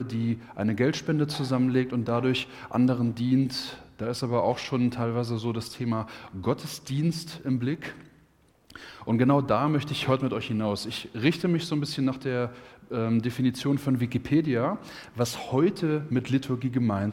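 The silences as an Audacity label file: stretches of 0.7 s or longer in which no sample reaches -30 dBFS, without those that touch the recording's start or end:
7.900000	8.760000	silence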